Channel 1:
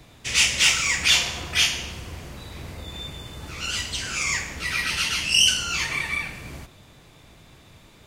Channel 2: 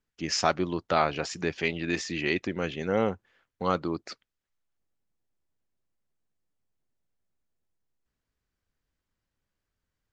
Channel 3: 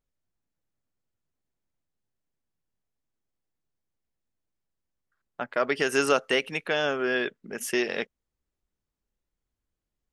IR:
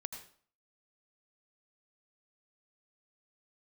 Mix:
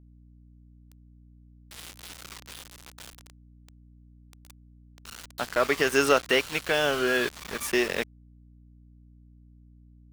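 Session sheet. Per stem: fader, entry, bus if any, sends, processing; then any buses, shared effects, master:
-10.5 dB, 1.45 s, no send, EQ curve 100 Hz 0 dB, 250 Hz -30 dB, 1000 Hz +11 dB, 1500 Hz +13 dB, 2200 Hz -4 dB, 4000 Hz +11 dB, 6000 Hz -10 dB, 14000 Hz -13 dB; compressor 16:1, threshold -20 dBFS, peak gain reduction 13 dB; limiter -18 dBFS, peak gain reduction 7 dB
-15.5 dB, 0.00 s, no send, compressor 12:1, threshold -29 dBFS, peak gain reduction 12 dB
+1.5 dB, 0.00 s, no send, dry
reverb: off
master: sample gate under -31 dBFS; hum 60 Hz, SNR 22 dB

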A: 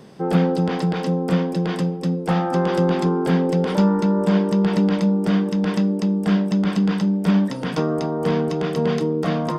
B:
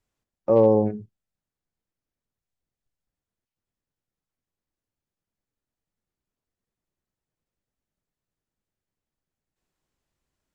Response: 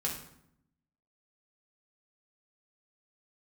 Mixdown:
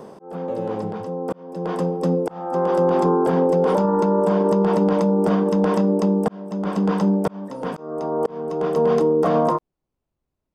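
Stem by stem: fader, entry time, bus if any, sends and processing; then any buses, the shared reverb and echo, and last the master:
+2.5 dB, 0.00 s, no send, graphic EQ 125/500/1000/2000/4000 Hz -6/+7/+8/-6/-7 dB; auto duck -16 dB, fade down 1.20 s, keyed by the second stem
+3.0 dB, 0.00 s, no send, median filter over 25 samples; compressor 6:1, threshold -25 dBFS, peak gain reduction 11.5 dB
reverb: off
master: auto swell 0.794 s; limiter -10.5 dBFS, peak gain reduction 9 dB

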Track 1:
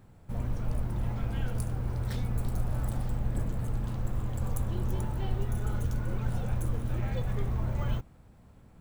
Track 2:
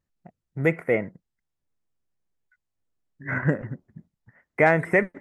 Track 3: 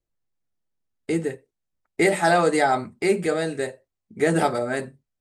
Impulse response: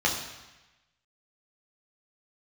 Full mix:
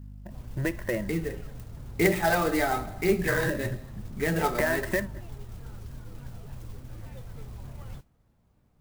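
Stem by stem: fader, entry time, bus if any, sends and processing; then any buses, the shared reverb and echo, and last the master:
-11.0 dB, 0.00 s, no send, modulation noise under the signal 20 dB; shaped vibrato saw down 3.4 Hz, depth 250 cents
0.0 dB, 0.00 s, no send, ripple EQ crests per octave 1.3, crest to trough 16 dB; compressor 4:1, threshold -28 dBFS, peak gain reduction 15.5 dB; high shelf 2800 Hz +10.5 dB
-6.0 dB, 0.00 s, send -19.5 dB, hum 50 Hz, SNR 18 dB; phaser 0.97 Hz, delay 3.6 ms, feedback 45%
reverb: on, RT60 1.1 s, pre-delay 3 ms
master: clock jitter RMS 0.028 ms

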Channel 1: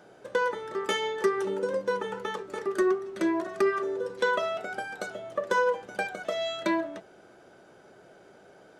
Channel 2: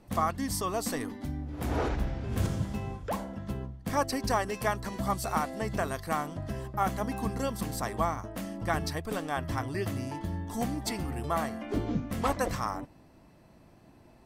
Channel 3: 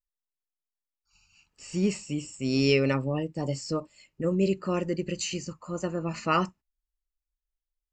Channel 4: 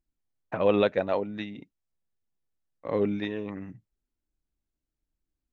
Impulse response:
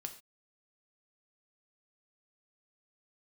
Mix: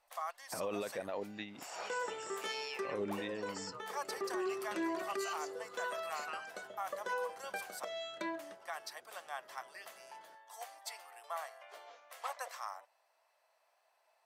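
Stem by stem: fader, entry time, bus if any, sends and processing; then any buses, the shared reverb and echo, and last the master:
4.98 s -1 dB -> 5.3 s -10 dB, 1.55 s, no send, auto duck -11 dB, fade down 0.70 s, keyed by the fourth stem
-9.0 dB, 0.00 s, muted 7.85–8.39, no send, steep high-pass 580 Hz 36 dB/oct
-6.5 dB, 0.00 s, no send, HPF 1400 Hz 12 dB/oct; compressor, threshold -35 dBFS, peak gain reduction 10.5 dB
-5.5 dB, 0.00 s, no send, dry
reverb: off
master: low shelf 350 Hz -8.5 dB; limiter -29 dBFS, peak gain reduction 12 dB

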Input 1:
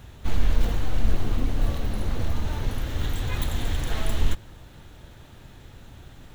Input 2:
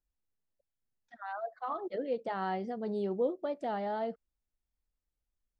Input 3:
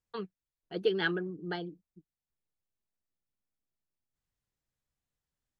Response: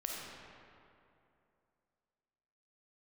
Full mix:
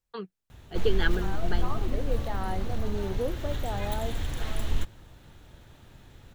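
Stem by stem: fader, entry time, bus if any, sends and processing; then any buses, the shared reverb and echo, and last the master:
-5.0 dB, 0.50 s, no send, dry
-1.0 dB, 0.00 s, no send, dry
+1.0 dB, 0.00 s, no send, dry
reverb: off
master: dry

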